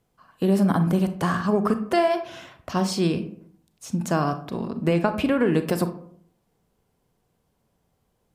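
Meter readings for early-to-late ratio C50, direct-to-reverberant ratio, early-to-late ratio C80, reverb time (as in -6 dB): 12.0 dB, 9.0 dB, 16.0 dB, 0.60 s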